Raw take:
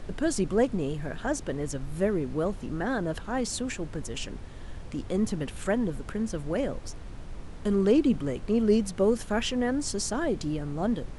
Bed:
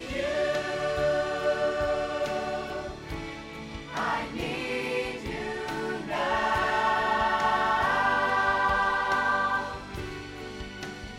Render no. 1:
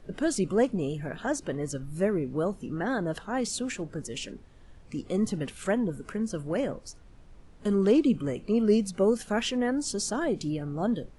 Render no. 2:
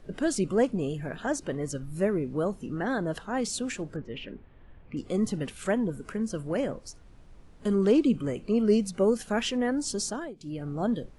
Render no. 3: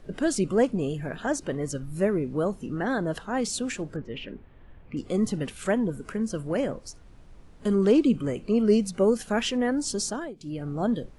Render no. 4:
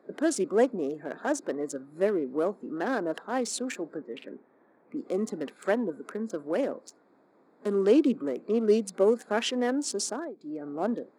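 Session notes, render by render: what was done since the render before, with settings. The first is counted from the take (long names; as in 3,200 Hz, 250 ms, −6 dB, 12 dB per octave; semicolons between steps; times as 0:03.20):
noise reduction from a noise print 12 dB
0:03.96–0:04.97: low-pass filter 2,900 Hz 24 dB per octave; 0:10.03–0:10.68: duck −18.5 dB, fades 0.31 s
level +2 dB
adaptive Wiener filter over 15 samples; high-pass filter 260 Hz 24 dB per octave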